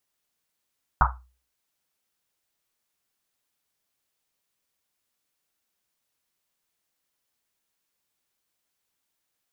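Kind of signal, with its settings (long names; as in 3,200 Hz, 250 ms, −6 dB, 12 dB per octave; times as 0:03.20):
drum after Risset, pitch 62 Hz, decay 0.40 s, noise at 1,100 Hz, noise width 600 Hz, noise 60%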